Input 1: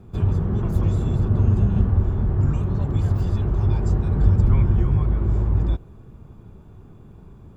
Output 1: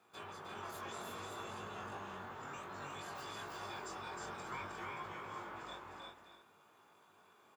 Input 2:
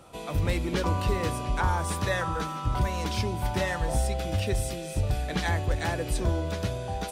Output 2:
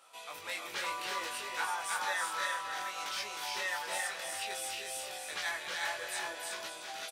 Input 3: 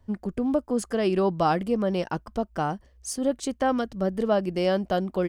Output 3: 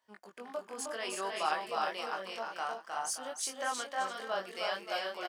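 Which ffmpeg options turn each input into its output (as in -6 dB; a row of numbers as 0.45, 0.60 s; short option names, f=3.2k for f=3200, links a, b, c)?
-af "highpass=1.1k,aecho=1:1:311|353|575|654:0.631|0.596|0.266|0.168,flanger=delay=19:depth=3.3:speed=0.59"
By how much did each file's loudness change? -25.0, -7.0, -10.0 LU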